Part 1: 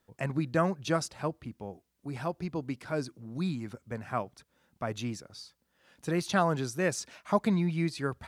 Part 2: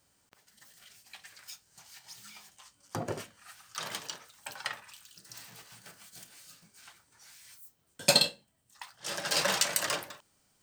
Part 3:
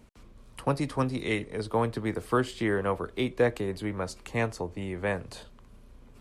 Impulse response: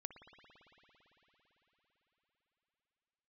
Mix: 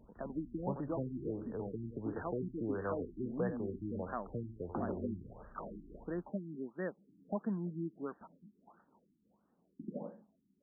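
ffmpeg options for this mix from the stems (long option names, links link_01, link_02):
-filter_complex "[0:a]lowshelf=frequency=170:gain=-9.5,aexciter=amount=8.7:drive=9.8:freq=8800,volume=-2dB[link_01];[1:a]lowpass=1200,alimiter=level_in=2.5dB:limit=-24dB:level=0:latency=1:release=310,volume=-2.5dB,adelay=1800,volume=2.5dB[link_02];[2:a]acompressor=threshold=-34dB:ratio=2,volume=-5dB,asplit=2[link_03][link_04];[link_04]volume=-11.5dB[link_05];[link_01][link_02]amix=inputs=2:normalize=0,lowshelf=frequency=150:width_type=q:width=3:gain=-10,acompressor=threshold=-40dB:ratio=2,volume=0dB[link_06];[link_05]aecho=0:1:90:1[link_07];[link_03][link_06][link_07]amix=inputs=3:normalize=0,afftfilt=real='re*lt(b*sr/1024,360*pow(1900/360,0.5+0.5*sin(2*PI*1.5*pts/sr)))':imag='im*lt(b*sr/1024,360*pow(1900/360,0.5+0.5*sin(2*PI*1.5*pts/sr)))':win_size=1024:overlap=0.75"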